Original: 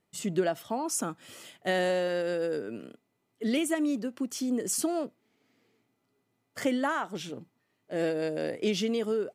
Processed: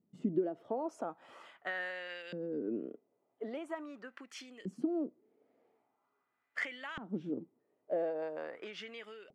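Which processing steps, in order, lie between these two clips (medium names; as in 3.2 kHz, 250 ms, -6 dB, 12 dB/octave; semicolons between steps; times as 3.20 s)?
treble shelf 4.2 kHz -5.5 dB; compression, threshold -32 dBFS, peak gain reduction 10.5 dB; LFO band-pass saw up 0.43 Hz 200–3000 Hz; trim +6.5 dB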